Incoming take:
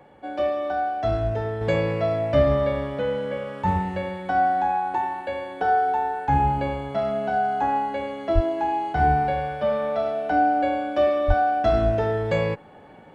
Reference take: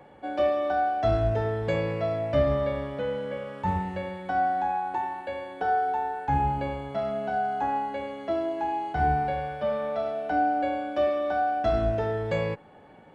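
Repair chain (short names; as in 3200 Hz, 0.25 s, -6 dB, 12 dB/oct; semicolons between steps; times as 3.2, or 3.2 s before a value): 8.34–8.46 HPF 140 Hz 24 dB/oct; 11.27–11.39 HPF 140 Hz 24 dB/oct; gain 0 dB, from 1.61 s -4.5 dB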